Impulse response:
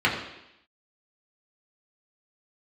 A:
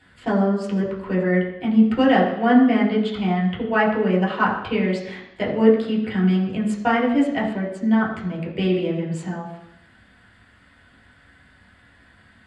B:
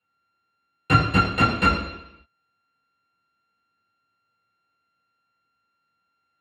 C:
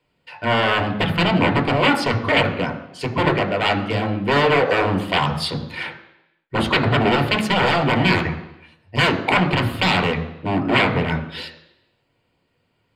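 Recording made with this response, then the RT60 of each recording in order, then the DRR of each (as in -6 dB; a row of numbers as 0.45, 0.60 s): A; 0.85, 0.85, 0.85 s; -5.0, -10.5, 4.5 dB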